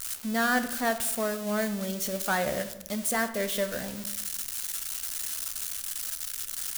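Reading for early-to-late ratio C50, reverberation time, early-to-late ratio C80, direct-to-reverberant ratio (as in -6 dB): 12.5 dB, 0.95 s, 14.5 dB, 9.0 dB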